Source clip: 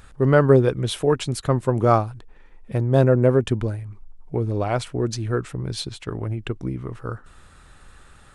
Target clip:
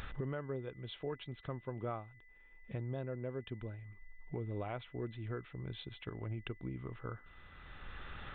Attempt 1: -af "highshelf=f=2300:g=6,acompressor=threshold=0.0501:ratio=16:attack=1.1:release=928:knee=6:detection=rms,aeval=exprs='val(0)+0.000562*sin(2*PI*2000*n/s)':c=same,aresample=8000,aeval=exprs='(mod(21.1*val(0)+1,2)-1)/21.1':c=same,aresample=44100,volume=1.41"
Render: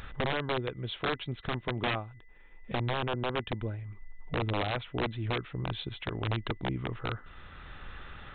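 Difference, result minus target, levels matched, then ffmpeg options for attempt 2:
compression: peak gain reduction -9.5 dB
-af "highshelf=f=2300:g=6,acompressor=threshold=0.0158:ratio=16:attack=1.1:release=928:knee=6:detection=rms,aeval=exprs='val(0)+0.000562*sin(2*PI*2000*n/s)':c=same,aresample=8000,aeval=exprs='(mod(21.1*val(0)+1,2)-1)/21.1':c=same,aresample=44100,volume=1.41"

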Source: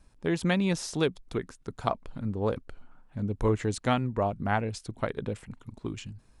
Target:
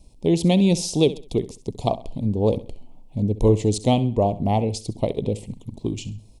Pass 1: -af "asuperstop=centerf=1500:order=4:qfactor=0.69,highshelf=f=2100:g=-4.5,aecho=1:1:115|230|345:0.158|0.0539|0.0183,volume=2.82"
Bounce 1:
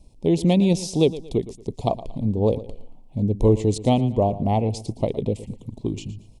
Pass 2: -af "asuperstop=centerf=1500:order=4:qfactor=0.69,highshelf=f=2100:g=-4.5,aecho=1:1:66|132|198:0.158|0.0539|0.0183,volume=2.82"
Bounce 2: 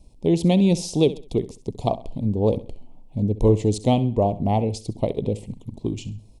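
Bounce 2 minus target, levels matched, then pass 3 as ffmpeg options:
4 kHz band -3.0 dB
-af "asuperstop=centerf=1500:order=4:qfactor=0.69,aecho=1:1:66|132|198:0.158|0.0539|0.0183,volume=2.82"

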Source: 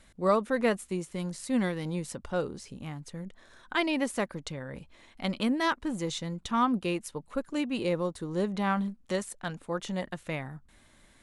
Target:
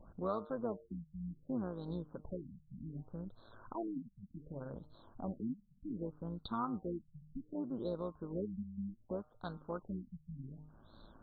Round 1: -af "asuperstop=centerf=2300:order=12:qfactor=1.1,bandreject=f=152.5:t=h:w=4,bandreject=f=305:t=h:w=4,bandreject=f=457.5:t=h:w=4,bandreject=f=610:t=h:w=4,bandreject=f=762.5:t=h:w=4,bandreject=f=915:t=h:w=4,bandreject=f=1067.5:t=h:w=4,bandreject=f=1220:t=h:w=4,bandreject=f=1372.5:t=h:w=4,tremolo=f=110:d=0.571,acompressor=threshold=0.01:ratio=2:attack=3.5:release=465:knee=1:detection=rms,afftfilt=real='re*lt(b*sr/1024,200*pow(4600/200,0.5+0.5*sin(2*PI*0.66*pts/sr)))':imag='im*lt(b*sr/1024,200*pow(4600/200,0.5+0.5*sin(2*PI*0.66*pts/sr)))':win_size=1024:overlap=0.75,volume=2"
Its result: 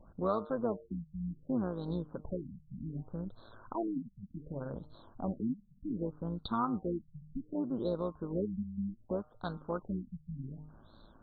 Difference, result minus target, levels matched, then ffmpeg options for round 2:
compression: peak gain reduction -5 dB
-af "asuperstop=centerf=2300:order=12:qfactor=1.1,bandreject=f=152.5:t=h:w=4,bandreject=f=305:t=h:w=4,bandreject=f=457.5:t=h:w=4,bandreject=f=610:t=h:w=4,bandreject=f=762.5:t=h:w=4,bandreject=f=915:t=h:w=4,bandreject=f=1067.5:t=h:w=4,bandreject=f=1220:t=h:w=4,bandreject=f=1372.5:t=h:w=4,tremolo=f=110:d=0.571,acompressor=threshold=0.00299:ratio=2:attack=3.5:release=465:knee=1:detection=rms,afftfilt=real='re*lt(b*sr/1024,200*pow(4600/200,0.5+0.5*sin(2*PI*0.66*pts/sr)))':imag='im*lt(b*sr/1024,200*pow(4600/200,0.5+0.5*sin(2*PI*0.66*pts/sr)))':win_size=1024:overlap=0.75,volume=2"

